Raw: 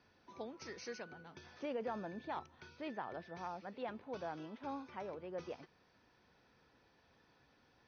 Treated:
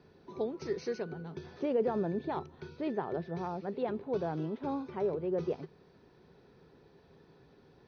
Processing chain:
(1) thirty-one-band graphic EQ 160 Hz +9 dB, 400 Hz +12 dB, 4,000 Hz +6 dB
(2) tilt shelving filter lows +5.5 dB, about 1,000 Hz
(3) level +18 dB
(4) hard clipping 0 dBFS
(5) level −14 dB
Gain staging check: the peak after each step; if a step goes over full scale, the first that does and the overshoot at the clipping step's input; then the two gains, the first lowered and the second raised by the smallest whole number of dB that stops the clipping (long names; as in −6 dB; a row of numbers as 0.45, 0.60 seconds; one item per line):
−27.0, −23.5, −5.5, −5.5, −19.5 dBFS
no step passes full scale